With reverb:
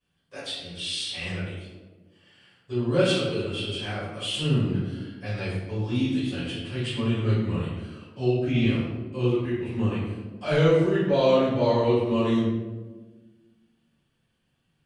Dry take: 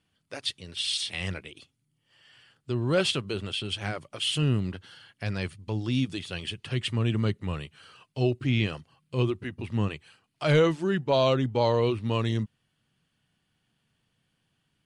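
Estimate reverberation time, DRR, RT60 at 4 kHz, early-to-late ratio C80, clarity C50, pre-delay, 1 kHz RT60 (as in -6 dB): 1.4 s, -14.0 dB, 0.70 s, 2.5 dB, -1.0 dB, 3 ms, 1.1 s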